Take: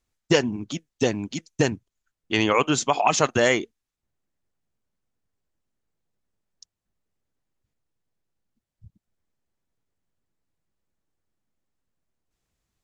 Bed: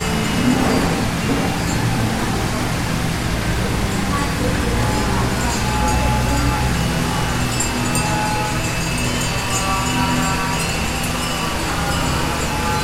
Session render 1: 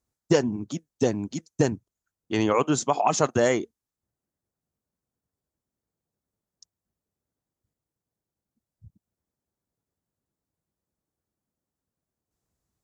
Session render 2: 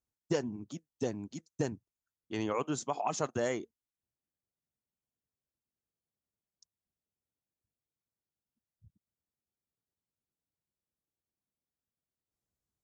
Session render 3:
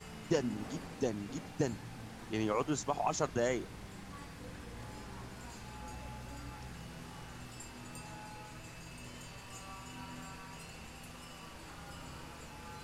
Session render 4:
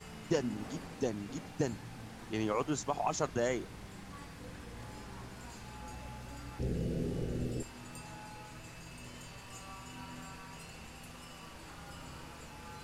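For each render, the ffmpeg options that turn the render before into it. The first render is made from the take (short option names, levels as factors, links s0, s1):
-af "highpass=57,equalizer=f=2700:w=0.82:g=-10.5"
-af "volume=0.282"
-filter_complex "[1:a]volume=0.0355[s0];[0:a][s0]amix=inputs=2:normalize=0"
-filter_complex "[0:a]asettb=1/sr,asplit=3[s0][s1][s2];[s0]atrim=end=6.594[s3];[s1]atrim=start=6.59:end=7.63,asetpts=PTS-STARTPTS,afade=t=in:d=0.004:c=qsin,afade=t=out:st=1.036:d=0.004:c=qsin,lowshelf=f=650:t=q:w=3:g=12.5[s4];[s2]atrim=start=7.626[s5];[s3][s4]acrossfade=d=0.004:c1=hsin:c2=qsin[s6];[s6][s5]acrossfade=d=0.004:c1=qsin:c2=hsin"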